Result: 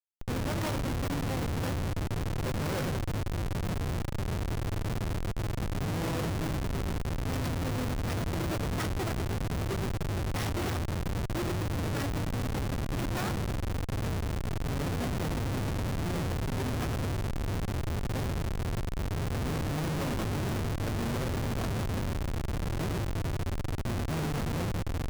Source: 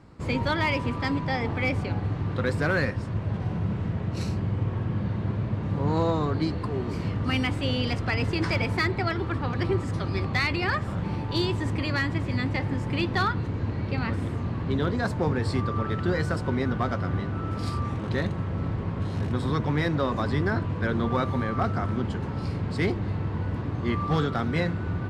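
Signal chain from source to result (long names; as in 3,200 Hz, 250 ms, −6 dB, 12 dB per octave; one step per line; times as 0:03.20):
samples sorted by size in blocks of 8 samples
delay that swaps between a low-pass and a high-pass 107 ms, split 830 Hz, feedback 50%, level −3 dB
comparator with hysteresis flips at −23.5 dBFS
level −5.5 dB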